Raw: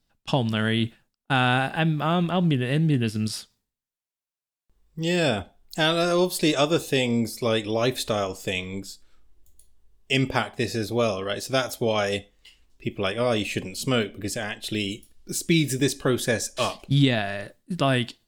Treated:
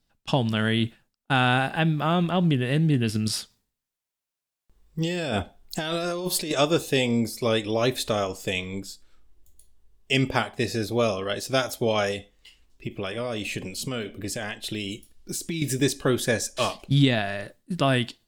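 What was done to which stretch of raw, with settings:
0:03.09–0:06.51: compressor whose output falls as the input rises −27 dBFS
0:12.11–0:15.62: downward compressor, threshold −26 dBFS

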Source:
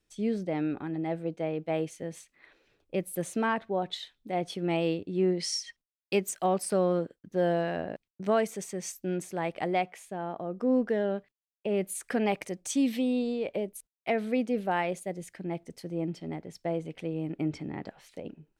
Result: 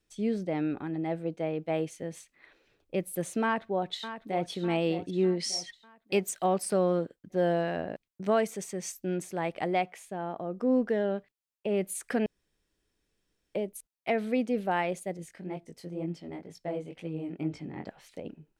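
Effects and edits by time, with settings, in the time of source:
0:03.43–0:04.50: delay throw 600 ms, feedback 50%, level −11 dB
0:12.26–0:13.55: fill with room tone
0:15.17–0:17.86: chorus effect 2.1 Hz, delay 17.5 ms, depth 5.5 ms

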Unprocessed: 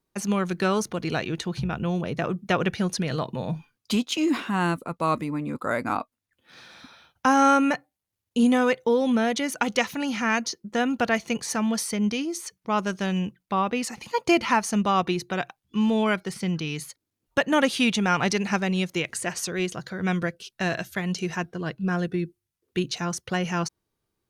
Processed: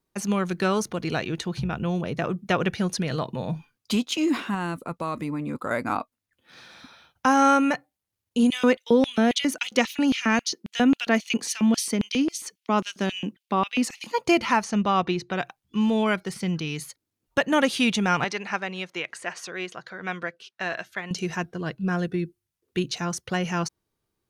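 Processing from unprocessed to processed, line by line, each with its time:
0:04.54–0:05.71: downward compressor, threshold −24 dBFS
0:08.50–0:14.13: auto-filter high-pass square 3.7 Hz 250–2,900 Hz
0:14.64–0:15.39: low-pass filter 5,400 Hz
0:18.24–0:21.11: resonant band-pass 1,400 Hz, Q 0.56

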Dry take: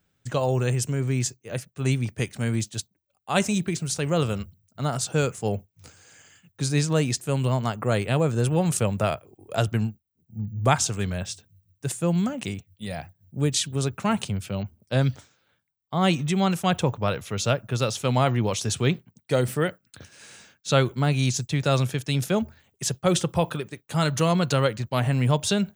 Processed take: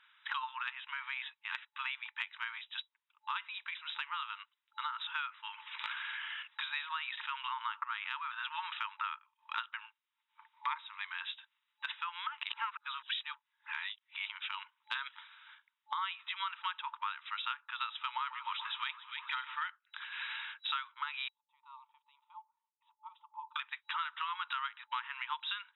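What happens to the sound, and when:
0:02.58–0:05.00: clip gain −6 dB
0:05.53–0:08.48: level that may fall only so fast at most 30 dB per second
0:10.54–0:11.11: EQ curve with evenly spaced ripples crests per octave 0.95, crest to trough 9 dB
0:12.49–0:14.26: reverse
0:17.87–0:19.67: delay that swaps between a low-pass and a high-pass 143 ms, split 1,200 Hz, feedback 68%, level −11 dB
0:21.28–0:23.56: elliptic band-pass filter 280–660 Hz, stop band 50 dB
whole clip: brick-wall band-pass 870–3,900 Hz; dynamic equaliser 1,300 Hz, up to +5 dB, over −46 dBFS, Q 3.7; downward compressor 6 to 1, threshold −51 dBFS; level +13.5 dB

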